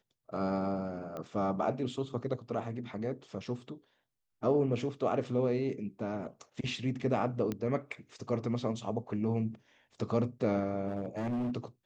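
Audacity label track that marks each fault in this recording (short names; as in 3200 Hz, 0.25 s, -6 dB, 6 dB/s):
1.170000	1.170000	pop -28 dBFS
7.520000	7.520000	pop -21 dBFS
10.870000	11.560000	clipped -30.5 dBFS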